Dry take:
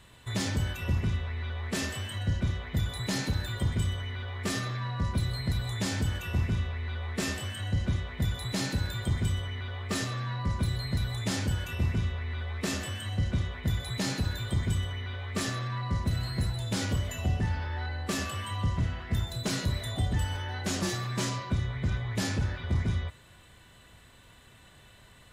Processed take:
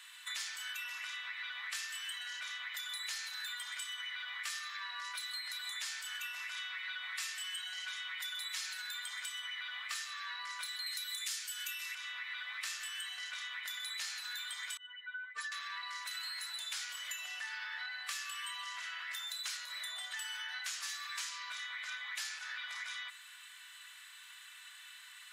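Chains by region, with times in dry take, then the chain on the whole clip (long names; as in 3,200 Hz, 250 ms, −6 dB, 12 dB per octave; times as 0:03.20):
0:06.56–0:08.82: Butterworth band-reject 640 Hz, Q 4 + comb filter 5.4 ms, depth 98%
0:10.86–0:11.95: Butterworth high-pass 860 Hz 72 dB per octave + spectral tilt +4 dB per octave
0:14.77–0:15.52: expanding power law on the bin magnitudes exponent 2 + hollow resonant body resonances 280/440/940/1,500 Hz, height 17 dB, ringing for 60 ms
0:19.57–0:20.11: tilt shelving filter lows +4.5 dB, about 1,200 Hz + notch filter 440 Hz
whole clip: inverse Chebyshev high-pass filter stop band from 300 Hz, stop band 70 dB; downward compressor 6 to 1, threshold −45 dBFS; level +6 dB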